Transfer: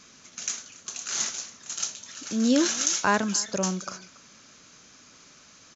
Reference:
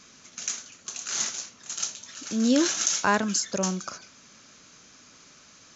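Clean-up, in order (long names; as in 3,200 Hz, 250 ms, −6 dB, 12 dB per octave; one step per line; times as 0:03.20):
echo removal 282 ms −21.5 dB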